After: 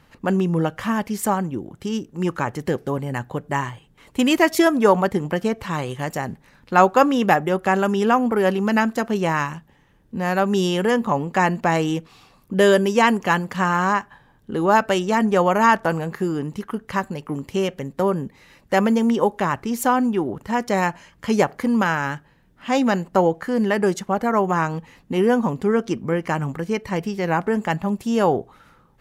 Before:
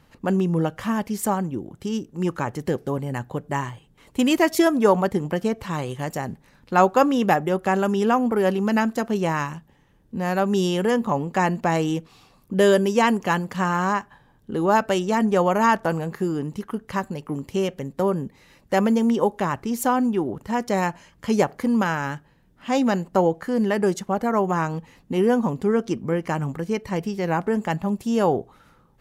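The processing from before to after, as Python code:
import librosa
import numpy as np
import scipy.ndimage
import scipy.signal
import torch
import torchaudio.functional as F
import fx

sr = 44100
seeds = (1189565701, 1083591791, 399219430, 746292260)

y = fx.peak_eq(x, sr, hz=1800.0, db=3.5, octaves=2.0)
y = y * 10.0 ** (1.0 / 20.0)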